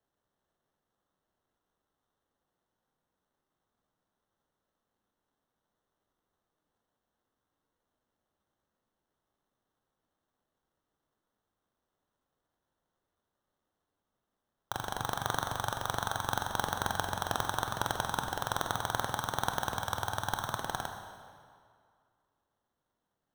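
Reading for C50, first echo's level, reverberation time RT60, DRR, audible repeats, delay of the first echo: 6.0 dB, none, 2.2 s, 4.5 dB, none, none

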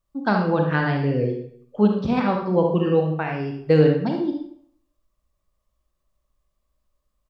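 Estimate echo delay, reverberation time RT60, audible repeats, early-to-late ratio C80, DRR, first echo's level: 71 ms, 0.65 s, 1, 8.5 dB, 1.5 dB, -8.0 dB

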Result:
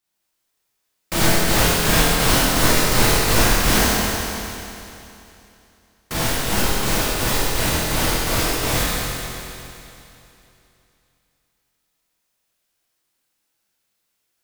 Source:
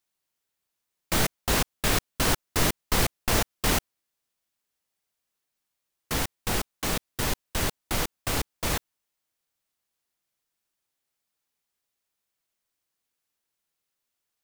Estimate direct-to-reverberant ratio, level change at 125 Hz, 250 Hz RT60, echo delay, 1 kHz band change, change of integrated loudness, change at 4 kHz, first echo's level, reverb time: -9.0 dB, +9.0 dB, 2.9 s, none, +9.5 dB, +9.0 dB, +10.0 dB, none, 2.9 s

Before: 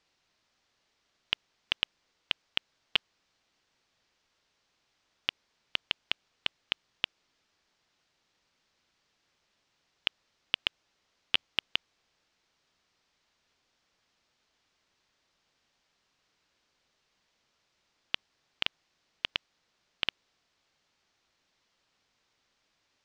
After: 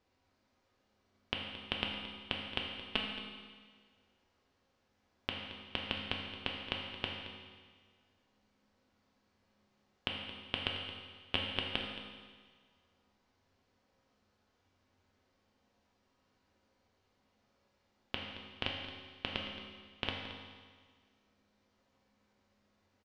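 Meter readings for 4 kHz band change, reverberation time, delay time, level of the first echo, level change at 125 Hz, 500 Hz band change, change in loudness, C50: -5.5 dB, 1.6 s, 0.222 s, -14.0 dB, +9.5 dB, +5.5 dB, -5.5 dB, 2.5 dB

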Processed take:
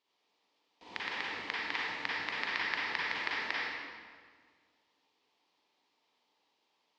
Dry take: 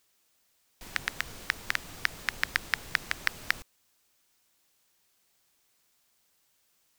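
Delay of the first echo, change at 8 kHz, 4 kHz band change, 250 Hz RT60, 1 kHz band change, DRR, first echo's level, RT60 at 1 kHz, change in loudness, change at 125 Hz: none, -15.5 dB, -1.5 dB, 1.9 s, +1.5 dB, -7.0 dB, none, 1.7 s, -2.5 dB, -10.5 dB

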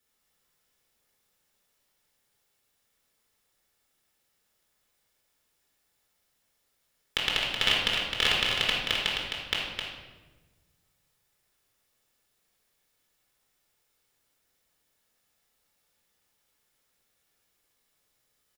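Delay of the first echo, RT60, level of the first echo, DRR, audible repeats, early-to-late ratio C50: 0.261 s, 1.2 s, -5.5 dB, -4.5 dB, 1, -0.5 dB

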